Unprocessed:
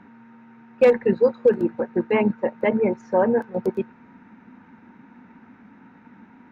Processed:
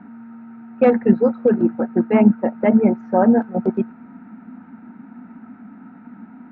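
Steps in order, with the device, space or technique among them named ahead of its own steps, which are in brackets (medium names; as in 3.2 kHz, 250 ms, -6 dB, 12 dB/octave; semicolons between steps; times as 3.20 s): inside a cardboard box (low-pass 2.9 kHz 12 dB/octave; small resonant body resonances 230/690/1300 Hz, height 13 dB, ringing for 25 ms); trim -2.5 dB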